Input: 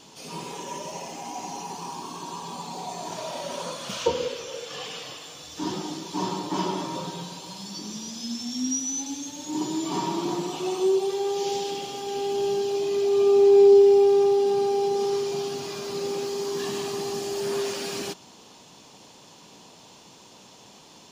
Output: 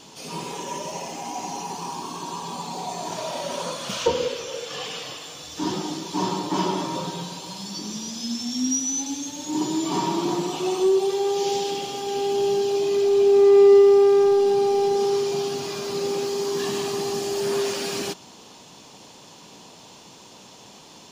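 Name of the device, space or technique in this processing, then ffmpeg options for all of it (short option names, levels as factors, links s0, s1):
parallel distortion: -filter_complex "[0:a]asplit=2[s0][s1];[s1]asoftclip=type=hard:threshold=0.0891,volume=0.501[s2];[s0][s2]amix=inputs=2:normalize=0"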